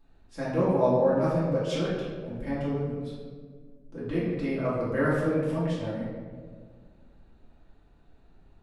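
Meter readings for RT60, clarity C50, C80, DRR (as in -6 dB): 1.8 s, -0.5 dB, 1.5 dB, -10.5 dB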